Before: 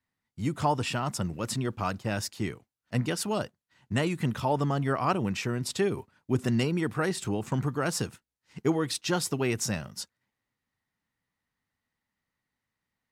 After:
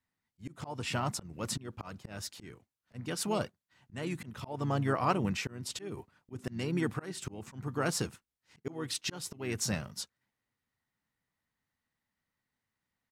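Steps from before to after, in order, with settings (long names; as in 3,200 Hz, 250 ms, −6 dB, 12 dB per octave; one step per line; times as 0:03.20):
pitch-shifted copies added −4 semitones −11 dB
volume swells 299 ms
level −2.5 dB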